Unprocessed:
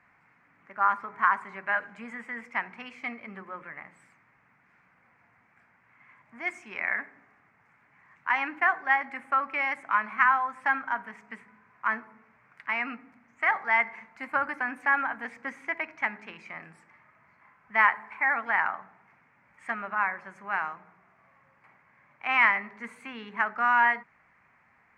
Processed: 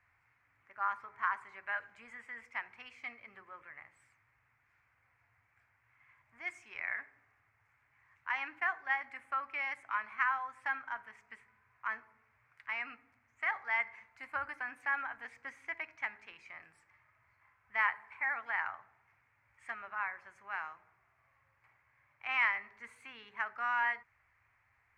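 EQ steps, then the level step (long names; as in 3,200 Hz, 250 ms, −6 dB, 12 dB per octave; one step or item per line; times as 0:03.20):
drawn EQ curve 110 Hz 0 dB, 180 Hz −25 dB, 320 Hz −16 dB, 3,500 Hz −6 dB
0.0 dB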